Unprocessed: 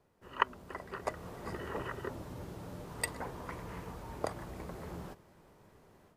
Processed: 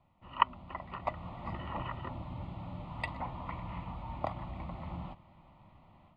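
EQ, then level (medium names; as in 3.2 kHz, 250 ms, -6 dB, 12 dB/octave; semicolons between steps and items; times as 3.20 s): low-pass 5.8 kHz; distance through air 150 m; static phaser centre 1.6 kHz, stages 6; +5.5 dB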